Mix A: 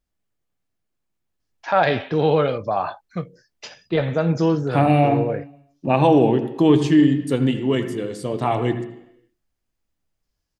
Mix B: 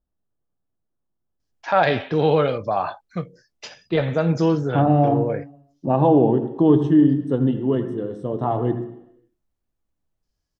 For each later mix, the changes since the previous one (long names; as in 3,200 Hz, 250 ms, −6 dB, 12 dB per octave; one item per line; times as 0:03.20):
second voice: add moving average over 19 samples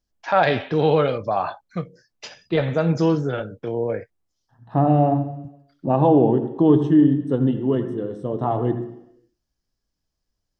first voice: entry −1.40 s